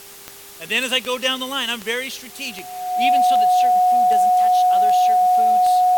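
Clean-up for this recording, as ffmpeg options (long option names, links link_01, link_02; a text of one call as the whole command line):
ffmpeg -i in.wav -af "adeclick=threshold=4,bandreject=frequency=399.4:width_type=h:width=4,bandreject=frequency=798.8:width_type=h:width=4,bandreject=frequency=1198.2:width_type=h:width=4,bandreject=frequency=730:width=30,afftdn=noise_reduction=25:noise_floor=-40" out.wav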